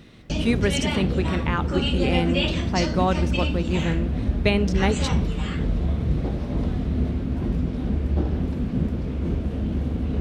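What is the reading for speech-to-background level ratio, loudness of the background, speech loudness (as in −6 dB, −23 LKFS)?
−1.0 dB, −25.5 LKFS, −26.5 LKFS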